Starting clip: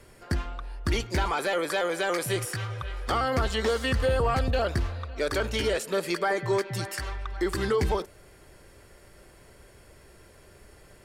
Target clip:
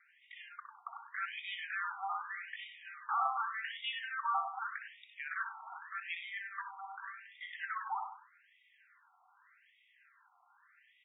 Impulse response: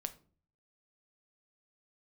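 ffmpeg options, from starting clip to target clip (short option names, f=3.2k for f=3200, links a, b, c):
-filter_complex "[0:a]asplit=2[a][b];[b]adelay=98,lowpass=f=1.7k:p=1,volume=-7dB,asplit=2[c][d];[d]adelay=98,lowpass=f=1.7k:p=1,volume=0.36,asplit=2[e][f];[f]adelay=98,lowpass=f=1.7k:p=1,volume=0.36,asplit=2[g][h];[h]adelay=98,lowpass=f=1.7k:p=1,volume=0.36[i];[a][c][e][g][i]amix=inputs=5:normalize=0,asplit=2[j][k];[1:a]atrim=start_sample=2205,adelay=62[l];[k][l]afir=irnorm=-1:irlink=0,volume=-6dB[m];[j][m]amix=inputs=2:normalize=0,afftfilt=real='re*between(b*sr/1024,970*pow(2700/970,0.5+0.5*sin(2*PI*0.84*pts/sr))/1.41,970*pow(2700/970,0.5+0.5*sin(2*PI*0.84*pts/sr))*1.41)':imag='im*between(b*sr/1024,970*pow(2700/970,0.5+0.5*sin(2*PI*0.84*pts/sr))/1.41,970*pow(2700/970,0.5+0.5*sin(2*PI*0.84*pts/sr))*1.41)':win_size=1024:overlap=0.75,volume=-4.5dB"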